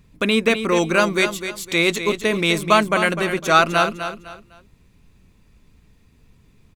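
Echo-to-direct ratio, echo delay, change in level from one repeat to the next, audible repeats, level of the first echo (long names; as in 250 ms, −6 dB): −9.0 dB, 253 ms, −10.5 dB, 3, −9.5 dB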